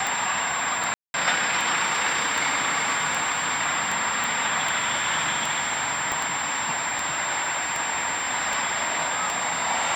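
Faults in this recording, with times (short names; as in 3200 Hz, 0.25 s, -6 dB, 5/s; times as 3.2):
tick 78 rpm
tone 7400 Hz -30 dBFS
0.94–1.14 gap 0.201 s
4.24 pop
6.12 pop -12 dBFS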